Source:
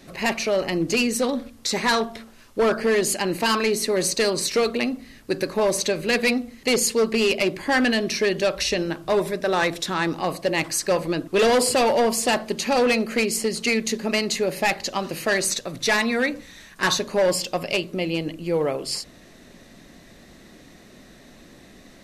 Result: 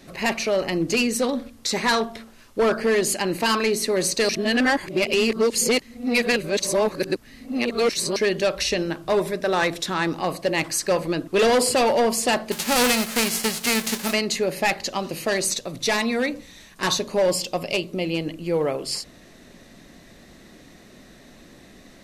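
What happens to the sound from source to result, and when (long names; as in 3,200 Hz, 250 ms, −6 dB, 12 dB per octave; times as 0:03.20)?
0:04.29–0:08.16: reverse
0:12.51–0:14.12: spectral envelope flattened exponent 0.3
0:14.96–0:18.05: parametric band 1,600 Hz −5.5 dB 0.72 octaves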